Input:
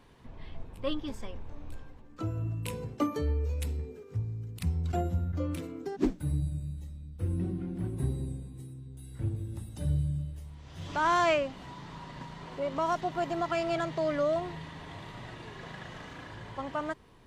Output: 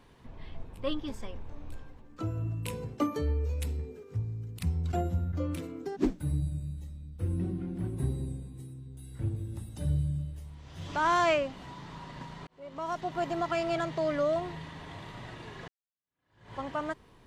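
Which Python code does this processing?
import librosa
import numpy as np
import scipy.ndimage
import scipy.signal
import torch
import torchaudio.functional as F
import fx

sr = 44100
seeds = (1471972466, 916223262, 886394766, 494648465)

y = fx.edit(x, sr, fx.fade_in_span(start_s=12.47, length_s=0.76),
    fx.fade_in_span(start_s=15.68, length_s=0.86, curve='exp'), tone=tone)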